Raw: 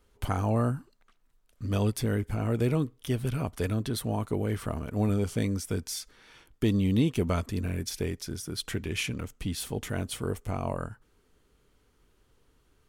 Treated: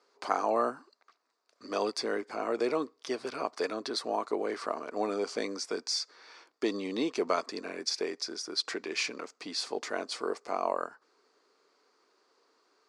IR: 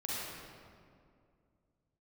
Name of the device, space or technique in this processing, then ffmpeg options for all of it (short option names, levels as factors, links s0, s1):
phone speaker on a table: -af "highpass=f=340:w=0.5412,highpass=f=340:w=1.3066,equalizer=f=700:t=q:w=4:g=3,equalizer=f=1100:t=q:w=4:g=6,equalizer=f=3100:t=q:w=4:g=-9,equalizer=f=4700:t=q:w=4:g=10,lowpass=f=6900:w=0.5412,lowpass=f=6900:w=1.3066,volume=1.19"